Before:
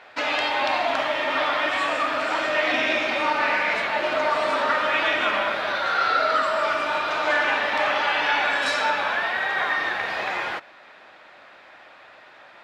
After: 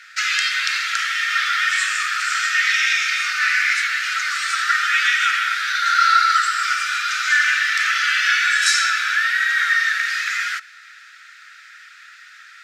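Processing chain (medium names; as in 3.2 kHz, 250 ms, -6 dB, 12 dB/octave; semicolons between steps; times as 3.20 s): rippled Chebyshev high-pass 1.3 kHz, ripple 3 dB; resonant high shelf 4.9 kHz +8.5 dB, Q 1.5; trim +9 dB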